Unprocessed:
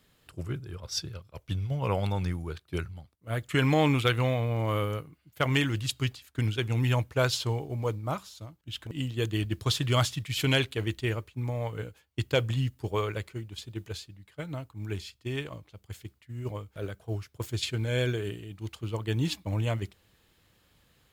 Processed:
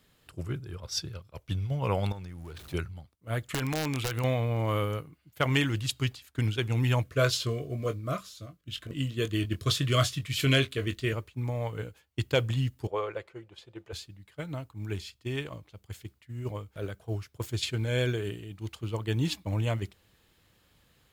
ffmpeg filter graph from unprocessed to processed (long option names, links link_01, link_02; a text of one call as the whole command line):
ffmpeg -i in.wav -filter_complex "[0:a]asettb=1/sr,asplit=3[link_01][link_02][link_03];[link_01]atrim=end=2.124[link_04];[link_02]atrim=start=2.12:end=2.74,asetpts=PTS-STARTPTS,afade=type=in:duration=0.004:curve=qsin,afade=type=out:start_time=0.616:duration=0.004:curve=qsin,aeval=exprs='val(0)+0.5*0.0075*sgn(val(0))':channel_layout=same,acompressor=threshold=-37dB:ratio=12:attack=3.2:release=140:knee=1:detection=peak[link_05];[link_03]atrim=start=2.736[link_06];[link_04][link_05]acrossfade=duration=0.004:curve1=hsin:curve2=qsin[link_07];[link_07][link_06]acrossfade=duration=0.004:curve1=qsin:curve2=hsin,asettb=1/sr,asplit=3[link_08][link_09][link_10];[link_08]atrim=end=3.524[link_11];[link_09]atrim=start=3.52:end=4.24,asetpts=PTS-STARTPTS,afade=type=in:duration=0.004:curve=qsin,afade=type=out:start_time=0.716:duration=0.004:curve=qsin,acompressor=threshold=-27dB:ratio=6:attack=3.2:release=140:knee=1:detection=peak,aeval=exprs='(mod(14.1*val(0)+1,2)-1)/14.1':channel_layout=same[link_12];[link_10]atrim=start=4.236[link_13];[link_11][link_12]acrossfade=duration=0.004:curve1=hsin:curve2=qsin[link_14];[link_14][link_13]acrossfade=duration=0.004:curve1=qsin:curve2=hsin,asettb=1/sr,asplit=3[link_15][link_16][link_17];[link_15]atrim=end=7.034[link_18];[link_16]atrim=start=7.03:end=11.13,asetpts=PTS-STARTPTS,afade=type=in:duration=0.004:curve=qsin,afade=type=out:start_time=4.096:duration=0.004:curve=qsin,asuperstop=centerf=860:order=20:qfactor=3,asplit=2[link_19][link_20];[link_20]adelay=22,volume=-9dB[link_21];[link_19][link_21]amix=inputs=2:normalize=0,atrim=end_sample=180810[link_22];[link_17]atrim=start=11.126[link_23];[link_18][link_22]acrossfade=duration=0.004:curve1=hsin:curve2=qsin[link_24];[link_24][link_23]acrossfade=duration=0.004:curve1=qsin:curve2=hsin,asettb=1/sr,asplit=3[link_25][link_26][link_27];[link_25]atrim=end=12.874[link_28];[link_26]atrim=start=12.87:end=13.93,asetpts=PTS-STARTPTS,afade=type=in:duration=0.004:curve=qsin,afade=type=out:start_time=1.056:duration=0.004:curve=qsin,lowpass=frequency=1300:poles=1,lowshelf=frequency=340:width_type=q:width=1.5:gain=-11,aecho=1:1:5.8:0.32,atrim=end_sample=46746[link_29];[link_27]atrim=start=13.926[link_30];[link_28][link_29]acrossfade=duration=0.004:curve1=hsin:curve2=qsin[link_31];[link_31][link_30]acrossfade=duration=0.004:curve1=qsin:curve2=hsin" out.wav